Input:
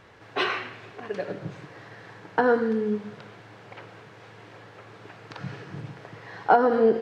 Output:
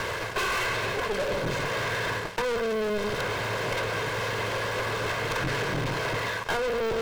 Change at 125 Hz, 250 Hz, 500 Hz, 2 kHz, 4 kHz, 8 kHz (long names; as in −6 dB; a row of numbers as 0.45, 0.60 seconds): +7.0 dB, −5.5 dB, −2.0 dB, +6.0 dB, +8.0 dB, can't be measured